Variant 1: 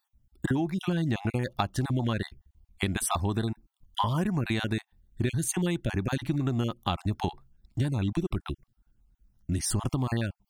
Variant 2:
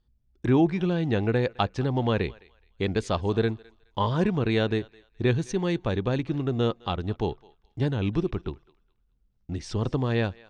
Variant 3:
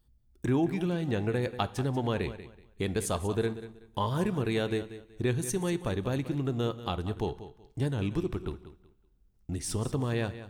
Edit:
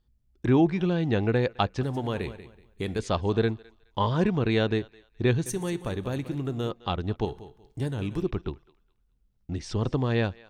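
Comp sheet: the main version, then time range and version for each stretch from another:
2
1.83–2.99 from 3
5.46–6.71 from 3
7.25–8.22 from 3
not used: 1

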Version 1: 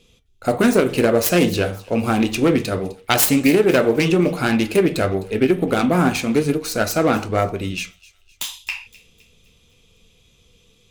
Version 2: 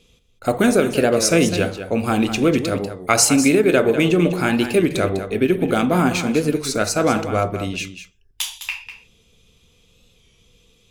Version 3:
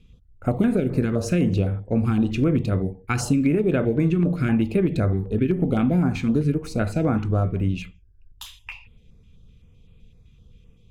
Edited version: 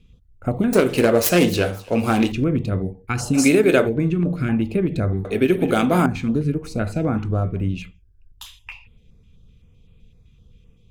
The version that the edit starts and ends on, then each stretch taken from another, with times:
3
0.73–2.32 from 1
3.36–3.87 from 2, crossfade 0.06 s
5.25–6.06 from 2

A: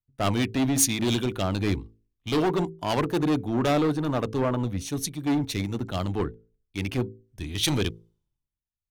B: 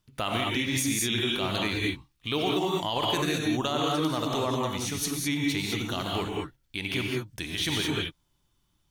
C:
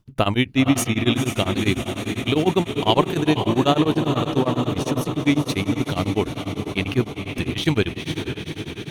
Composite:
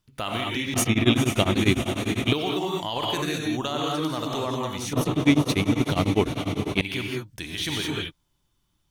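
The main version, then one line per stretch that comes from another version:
B
0.74–2.33 from C
4.93–6.81 from C
not used: A

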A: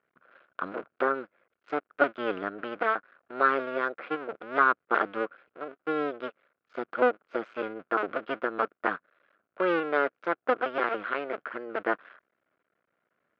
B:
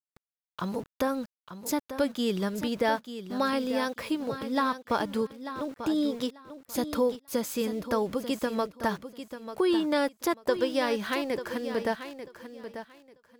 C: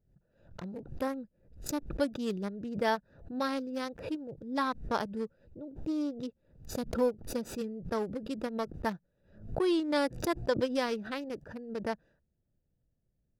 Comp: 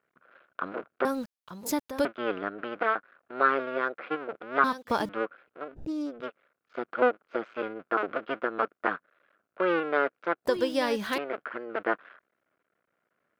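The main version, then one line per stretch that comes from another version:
A
1.05–2.05 from B
4.64–5.09 from B
5.73–6.17 from C, crossfade 0.24 s
10.45–11.18 from B

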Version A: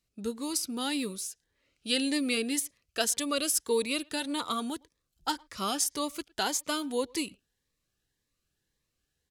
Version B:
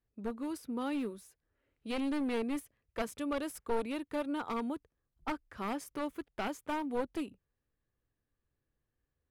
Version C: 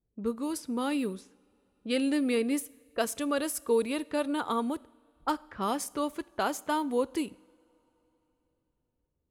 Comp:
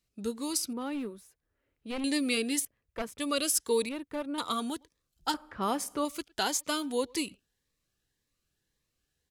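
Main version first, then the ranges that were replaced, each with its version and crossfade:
A
0.73–2.04 from B
2.65–3.2 from B
3.89–4.38 from B
5.34–6.05 from C

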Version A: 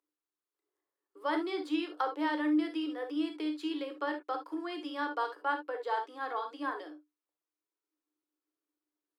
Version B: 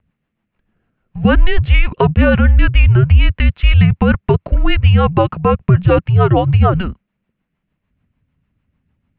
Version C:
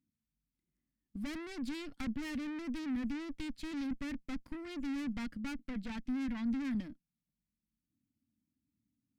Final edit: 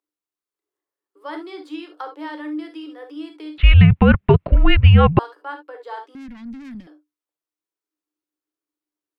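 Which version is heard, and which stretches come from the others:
A
3.58–5.19 from B
6.15–6.87 from C

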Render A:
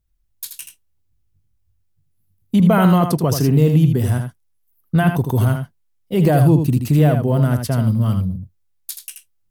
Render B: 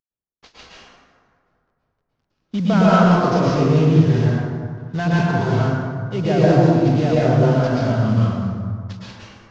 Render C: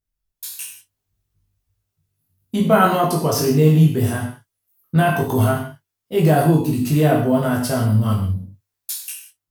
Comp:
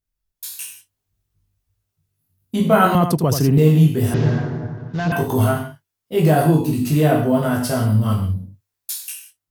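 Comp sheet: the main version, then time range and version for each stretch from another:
C
2.95–3.58 from A
4.14–5.12 from B

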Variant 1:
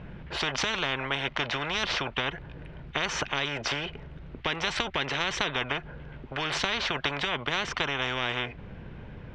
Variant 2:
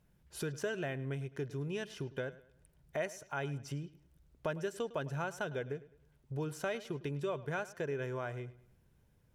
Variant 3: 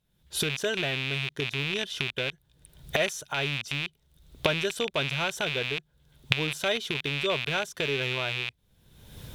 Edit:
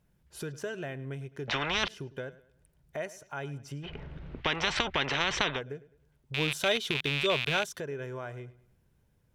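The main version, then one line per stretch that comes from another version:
2
1.48–1.88 from 1
3.87–5.57 from 1, crossfade 0.10 s
6.34–7.8 from 3

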